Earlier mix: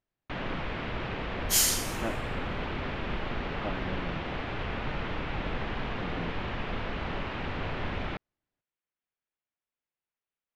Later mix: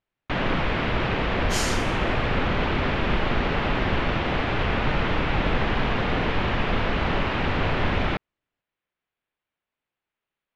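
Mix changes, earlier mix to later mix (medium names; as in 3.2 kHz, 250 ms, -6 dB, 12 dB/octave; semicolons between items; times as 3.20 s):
first sound +10.0 dB; second sound: add distance through air 78 m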